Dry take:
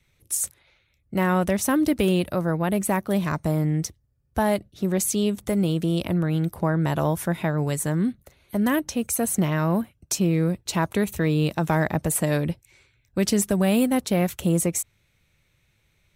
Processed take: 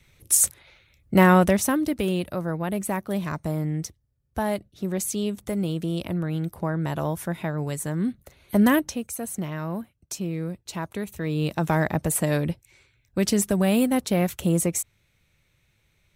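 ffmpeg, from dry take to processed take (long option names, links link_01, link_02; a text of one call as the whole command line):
ffmpeg -i in.wav -af "volume=23.5dB,afade=type=out:start_time=1.2:duration=0.61:silence=0.281838,afade=type=in:start_time=7.95:duration=0.65:silence=0.354813,afade=type=out:start_time=8.6:duration=0.45:silence=0.223872,afade=type=in:start_time=11.17:duration=0.45:silence=0.421697" out.wav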